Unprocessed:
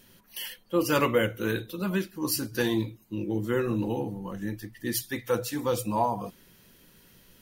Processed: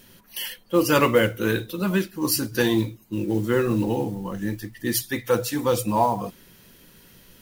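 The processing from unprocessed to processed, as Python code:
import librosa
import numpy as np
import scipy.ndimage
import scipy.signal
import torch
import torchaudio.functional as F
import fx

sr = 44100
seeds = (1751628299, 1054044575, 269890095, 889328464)

y = fx.mod_noise(x, sr, seeds[0], snr_db=27)
y = F.gain(torch.from_numpy(y), 5.5).numpy()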